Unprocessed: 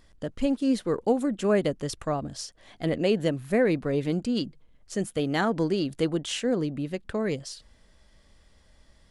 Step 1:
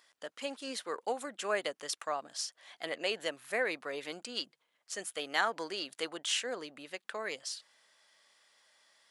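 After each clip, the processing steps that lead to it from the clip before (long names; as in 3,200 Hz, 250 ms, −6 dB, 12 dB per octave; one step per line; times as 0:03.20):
high-pass filter 920 Hz 12 dB per octave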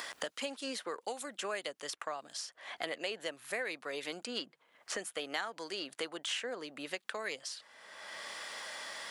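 multiband upward and downward compressor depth 100%
level −2.5 dB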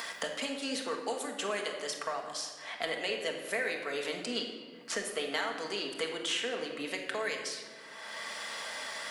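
rectangular room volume 1,600 cubic metres, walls mixed, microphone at 1.6 metres
level +2 dB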